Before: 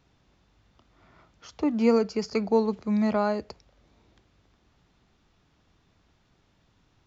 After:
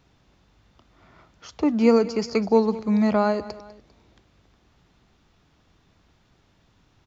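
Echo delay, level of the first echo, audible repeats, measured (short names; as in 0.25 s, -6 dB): 0.199 s, -18.0 dB, 2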